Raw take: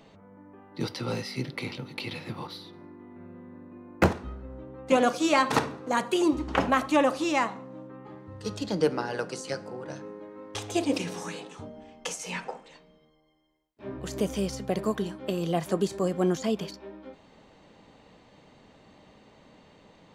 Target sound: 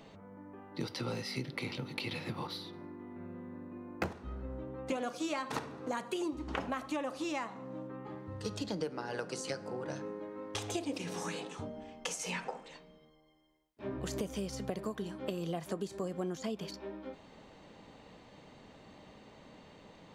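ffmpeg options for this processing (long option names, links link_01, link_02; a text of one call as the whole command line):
ffmpeg -i in.wav -af "acompressor=threshold=-34dB:ratio=6" out.wav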